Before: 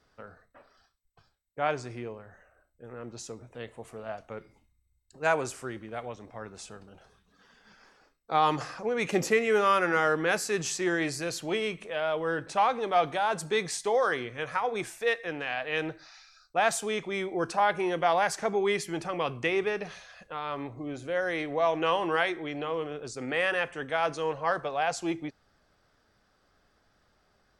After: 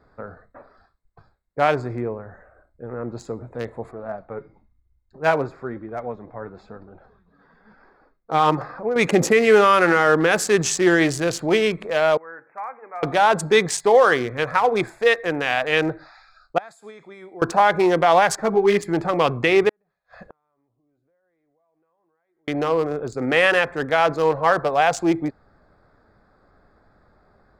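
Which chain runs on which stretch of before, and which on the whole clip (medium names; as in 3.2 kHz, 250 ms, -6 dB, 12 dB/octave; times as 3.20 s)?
3.91–8.96 s: flange 1 Hz, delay 2.4 ms, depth 4.9 ms, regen +58% + boxcar filter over 5 samples
12.17–13.03 s: steep low-pass 2.4 kHz 96 dB/octave + differentiator + de-hum 117.2 Hz, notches 8
16.58–17.42 s: pre-emphasis filter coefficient 0.9 + compression 12:1, threshold -42 dBFS + high-pass 69 Hz
18.36–18.83 s: band-stop 2.1 kHz, Q 25 + hysteresis with a dead band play -48 dBFS + three-phase chorus
19.69–22.48 s: compression 10:1, threshold -37 dBFS + inverted gate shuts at -39 dBFS, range -40 dB
whole clip: local Wiener filter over 15 samples; loudness maximiser +16 dB; trim -4 dB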